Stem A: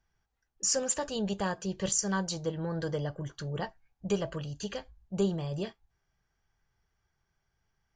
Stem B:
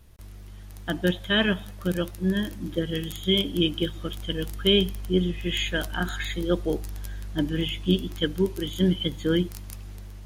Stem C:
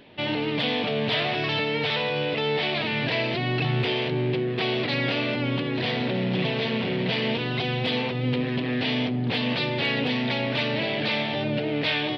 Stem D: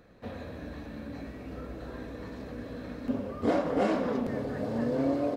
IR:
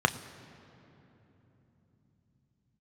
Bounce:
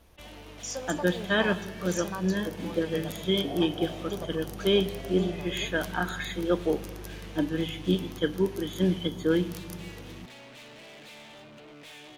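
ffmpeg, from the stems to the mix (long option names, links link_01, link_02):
-filter_complex "[0:a]volume=-8.5dB,asplit=2[link_01][link_02];[link_02]volume=-12dB[link_03];[1:a]volume=-1.5dB,asplit=2[link_04][link_05];[link_05]volume=-16dB[link_06];[2:a]asoftclip=type=hard:threshold=-29.5dB,volume=-15.5dB[link_07];[3:a]lowpass=frequency=730:width_type=q:width=4.9,volume=-19.5dB[link_08];[4:a]atrim=start_sample=2205[link_09];[link_03][link_06]amix=inputs=2:normalize=0[link_10];[link_10][link_09]afir=irnorm=-1:irlink=0[link_11];[link_01][link_04][link_07][link_08][link_11]amix=inputs=5:normalize=0,lowshelf=frequency=300:gain=-5.5"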